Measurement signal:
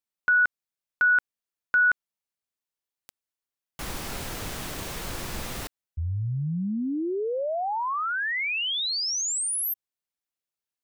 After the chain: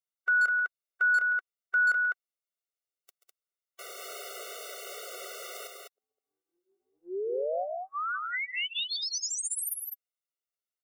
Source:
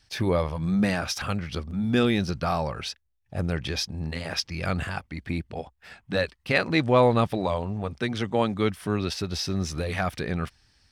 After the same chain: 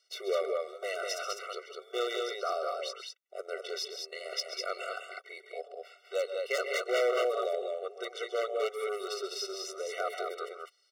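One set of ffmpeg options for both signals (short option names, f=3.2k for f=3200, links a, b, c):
-af "aecho=1:1:132|139|203:0.224|0.188|0.631,aeval=exprs='0.168*(abs(mod(val(0)/0.168+3,4)-2)-1)':c=same,afftfilt=real='re*eq(mod(floor(b*sr/1024/380),2),1)':imag='im*eq(mod(floor(b*sr/1024/380),2),1)':win_size=1024:overlap=0.75,volume=-4dB"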